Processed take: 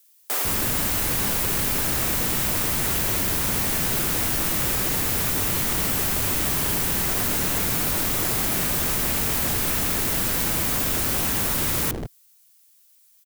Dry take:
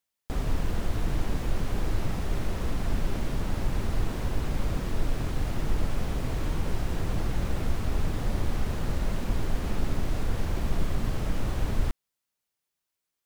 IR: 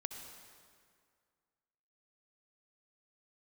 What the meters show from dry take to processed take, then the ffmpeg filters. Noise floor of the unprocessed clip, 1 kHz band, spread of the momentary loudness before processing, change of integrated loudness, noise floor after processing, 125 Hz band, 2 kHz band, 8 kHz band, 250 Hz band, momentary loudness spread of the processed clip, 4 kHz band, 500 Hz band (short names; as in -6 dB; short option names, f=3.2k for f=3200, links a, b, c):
-85 dBFS, +8.5 dB, 1 LU, +11.0 dB, -57 dBFS, -0.5 dB, +12.5 dB, +22.5 dB, +4.0 dB, 0 LU, +15.0 dB, +5.0 dB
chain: -filter_complex "[0:a]equalizer=f=110:w=1:g=3.5,acrossover=split=560|2800[a][b][c];[c]aeval=exprs='(mod(211*val(0)+1,2)-1)/211':c=same[d];[a][b][d]amix=inputs=3:normalize=0,acrossover=split=370[e][f];[e]adelay=150[g];[g][f]amix=inputs=2:normalize=0,aeval=exprs='0.0316*(abs(mod(val(0)/0.0316+3,4)-2)-1)':c=same,crystalizer=i=9:c=0,volume=5dB"